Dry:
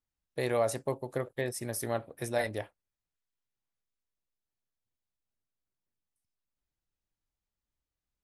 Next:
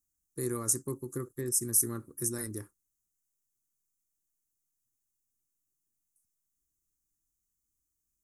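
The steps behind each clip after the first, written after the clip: FFT filter 170 Hz 0 dB, 360 Hz +3 dB, 670 Hz -29 dB, 1.2 kHz -2 dB, 3.1 kHz -25 dB, 6.5 kHz +13 dB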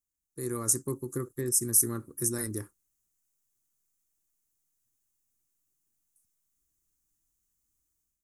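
level rider gain up to 11 dB; trim -6.5 dB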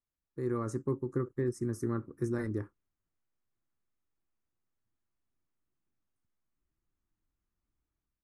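low-pass 1.8 kHz 12 dB/octave; trim +1.5 dB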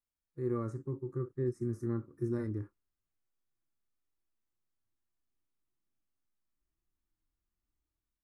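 harmonic-percussive split percussive -15 dB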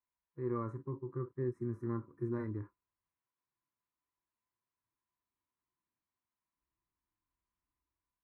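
high-pass 50 Hz; resonant high shelf 3.2 kHz -13 dB, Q 1.5; small resonant body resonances 1/4 kHz, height 17 dB, ringing for 45 ms; trim -3 dB

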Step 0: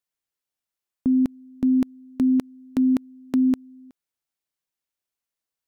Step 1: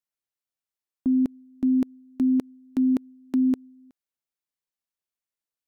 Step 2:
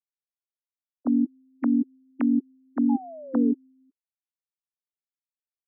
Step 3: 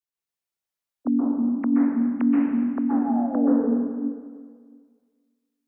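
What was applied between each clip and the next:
dynamic bell 370 Hz, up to +6 dB, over -34 dBFS, Q 0.94; trim -6 dB
formants replaced by sine waves; painted sound fall, 2.89–3.52 s, 420–860 Hz -33 dBFS; upward expansion 1.5:1, over -39 dBFS
plate-style reverb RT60 1.8 s, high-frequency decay 1×, pre-delay 115 ms, DRR -6 dB

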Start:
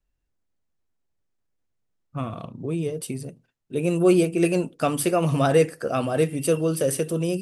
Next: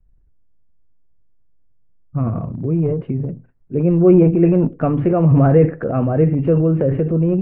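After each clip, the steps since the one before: steep low-pass 2.3 kHz 36 dB/octave; tilt EQ -4 dB/octave; transient shaper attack 0 dB, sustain +8 dB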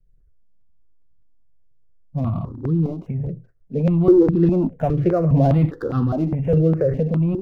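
median filter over 15 samples; stepped phaser 4.9 Hz 250–2300 Hz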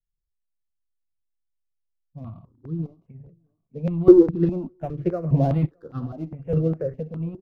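feedback delay 610 ms, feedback 33%, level -19.5 dB; upward expansion 2.5:1, over -29 dBFS; trim +4 dB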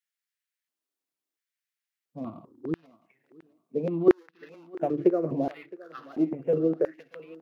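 compression 8:1, threshold -27 dBFS, peak gain reduction 21 dB; LFO high-pass square 0.73 Hz 320–1800 Hz; thinning echo 665 ms, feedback 16%, high-pass 370 Hz, level -18.5 dB; trim +4.5 dB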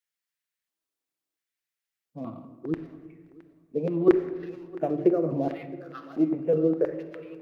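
simulated room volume 1400 m³, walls mixed, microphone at 0.63 m

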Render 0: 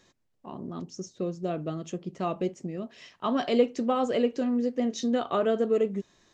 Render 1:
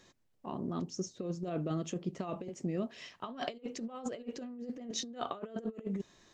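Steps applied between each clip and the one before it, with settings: compressor with a negative ratio -32 dBFS, ratio -0.5; trim -5 dB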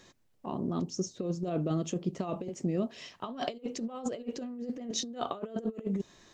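dynamic bell 1.8 kHz, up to -5 dB, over -56 dBFS, Q 1.1; trim +4.5 dB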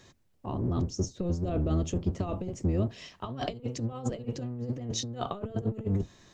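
octave divider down 1 oct, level +3 dB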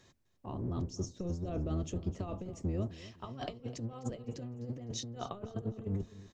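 feedback delay 254 ms, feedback 32%, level -17 dB; trim -7 dB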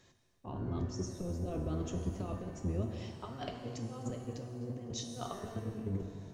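pitch-shifted reverb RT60 1.5 s, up +7 st, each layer -8 dB, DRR 4.5 dB; trim -1.5 dB

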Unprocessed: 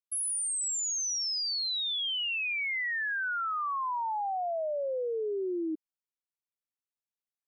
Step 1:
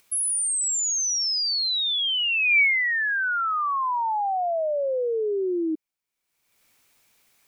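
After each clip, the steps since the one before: peaking EQ 2.3 kHz +8 dB 0.21 oct; upward compressor, threshold -50 dBFS; trim +7 dB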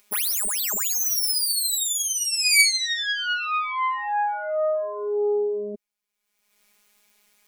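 self-modulated delay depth 0.25 ms; robot voice 207 Hz; trim +3.5 dB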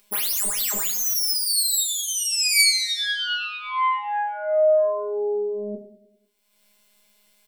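feedback delay 100 ms, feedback 55%, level -15 dB; simulated room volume 150 m³, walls furnished, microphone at 1.2 m; trim -1 dB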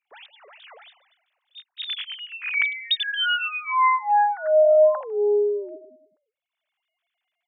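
formants replaced by sine waves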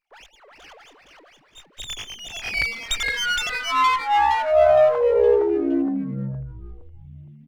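frequency-shifting echo 465 ms, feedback 46%, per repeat -140 Hz, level -3.5 dB; sliding maximum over 5 samples

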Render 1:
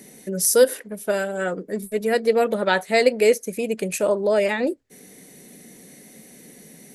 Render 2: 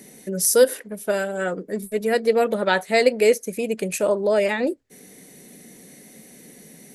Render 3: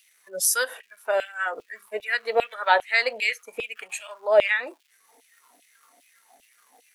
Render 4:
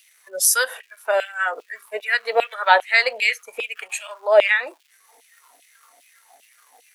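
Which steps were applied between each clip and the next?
no audible change
crackle 540 per s -38 dBFS; LFO high-pass saw down 2.5 Hz 580–3000 Hz; spectral noise reduction 13 dB; trim -2 dB
high-pass 480 Hz 12 dB/octave; trim +5 dB

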